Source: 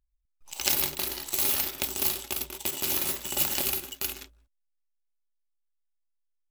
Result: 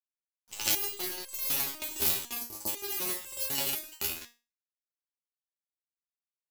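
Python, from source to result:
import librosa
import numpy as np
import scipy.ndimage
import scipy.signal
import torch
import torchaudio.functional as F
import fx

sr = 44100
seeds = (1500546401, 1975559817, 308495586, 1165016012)

y = fx.spec_erase(x, sr, start_s=2.39, length_s=0.29, low_hz=1200.0, high_hz=4100.0)
y = np.where(np.abs(y) >= 10.0 ** (-41.0 / 20.0), y, 0.0)
y = fx.resonator_held(y, sr, hz=4.0, low_hz=81.0, high_hz=530.0)
y = y * 10.0 ** (8.5 / 20.0)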